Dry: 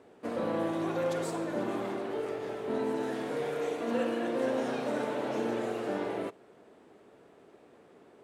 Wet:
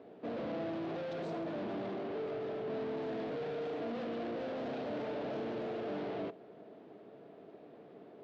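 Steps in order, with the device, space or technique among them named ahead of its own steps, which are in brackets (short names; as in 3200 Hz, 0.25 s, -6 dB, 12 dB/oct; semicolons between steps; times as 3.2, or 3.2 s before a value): guitar amplifier (tube stage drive 42 dB, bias 0.5; tone controls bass +5 dB, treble +7 dB; speaker cabinet 110–4000 Hz, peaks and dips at 140 Hz +5 dB, 200 Hz +5 dB, 300 Hz +6 dB, 440 Hz +6 dB, 660 Hz +10 dB); gain -1.5 dB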